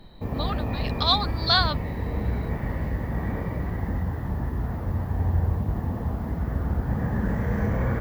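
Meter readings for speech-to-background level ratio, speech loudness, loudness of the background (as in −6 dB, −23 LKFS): 4.0 dB, −24.5 LKFS, −28.5 LKFS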